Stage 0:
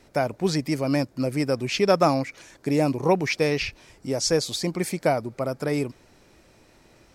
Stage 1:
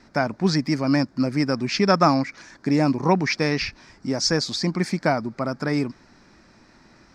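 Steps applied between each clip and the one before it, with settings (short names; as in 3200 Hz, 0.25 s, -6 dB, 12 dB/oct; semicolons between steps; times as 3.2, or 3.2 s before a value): EQ curve 120 Hz 0 dB, 220 Hz +8 dB, 480 Hz -4 dB, 1000 Hz +5 dB, 1700 Hz +7 dB, 3000 Hz -4 dB, 5000 Hz +6 dB, 12000 Hz -18 dB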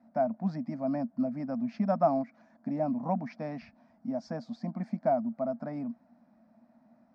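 double band-pass 390 Hz, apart 1.5 oct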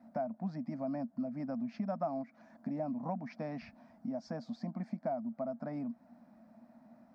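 compressor 2.5:1, threshold -42 dBFS, peak gain reduction 15 dB; gain +3 dB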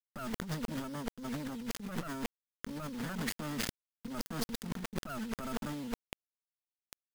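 minimum comb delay 0.62 ms; bit-crush 8-bit; negative-ratio compressor -49 dBFS, ratio -1; gain +10 dB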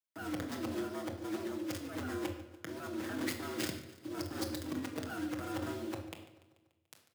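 frequency shift +82 Hz; feedback echo 0.145 s, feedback 59%, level -17.5 dB; on a send at -1.5 dB: reverb RT60 0.70 s, pre-delay 6 ms; on the sum: gain -3.5 dB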